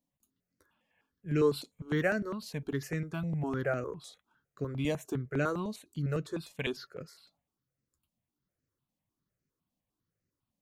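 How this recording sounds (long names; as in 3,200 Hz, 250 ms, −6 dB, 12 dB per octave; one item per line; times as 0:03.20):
notches that jump at a steady rate 9.9 Hz 390–3,400 Hz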